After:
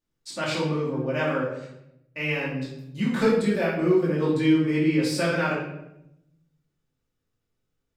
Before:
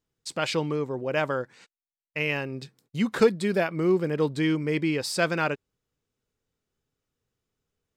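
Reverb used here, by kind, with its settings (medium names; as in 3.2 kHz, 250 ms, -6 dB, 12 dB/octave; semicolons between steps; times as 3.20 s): simulated room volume 240 m³, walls mixed, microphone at 2.5 m; trim -7.5 dB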